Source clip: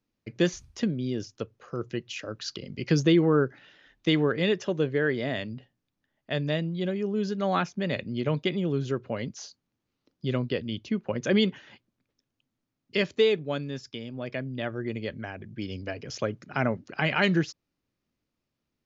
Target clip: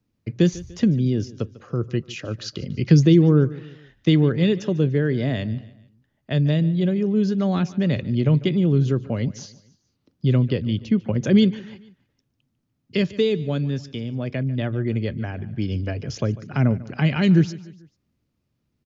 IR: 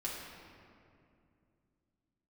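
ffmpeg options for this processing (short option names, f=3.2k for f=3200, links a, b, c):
-filter_complex "[0:a]equalizer=f=96:w=0.44:g=12,acrossover=split=420|3000[a][b][c];[b]acompressor=threshold=-31dB:ratio=6[d];[a][d][c]amix=inputs=3:normalize=0,asplit=2[e][f];[f]aecho=0:1:147|294|441:0.112|0.0494|0.0217[g];[e][g]amix=inputs=2:normalize=0,volume=2dB"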